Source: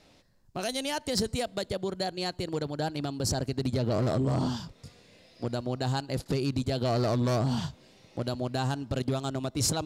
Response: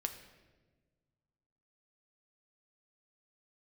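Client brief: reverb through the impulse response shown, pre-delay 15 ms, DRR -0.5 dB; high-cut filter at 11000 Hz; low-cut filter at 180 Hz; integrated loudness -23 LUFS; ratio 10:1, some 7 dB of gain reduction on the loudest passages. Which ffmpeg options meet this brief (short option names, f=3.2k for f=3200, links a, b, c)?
-filter_complex "[0:a]highpass=180,lowpass=11k,acompressor=threshold=-32dB:ratio=10,asplit=2[a][b];[1:a]atrim=start_sample=2205,adelay=15[c];[b][c]afir=irnorm=-1:irlink=0,volume=0.5dB[d];[a][d]amix=inputs=2:normalize=0,volume=11dB"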